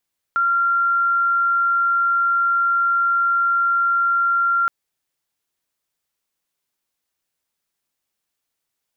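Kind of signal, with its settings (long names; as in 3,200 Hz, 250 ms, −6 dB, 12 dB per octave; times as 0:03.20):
tone sine 1,380 Hz −15 dBFS 4.32 s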